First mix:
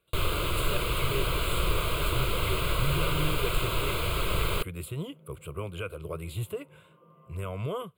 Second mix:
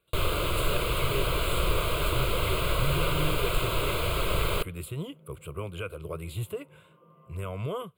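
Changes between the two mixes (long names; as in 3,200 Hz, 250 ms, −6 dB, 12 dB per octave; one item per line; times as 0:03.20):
first sound: add parametric band 600 Hz +4 dB 0.87 octaves
reverb: on, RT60 0.80 s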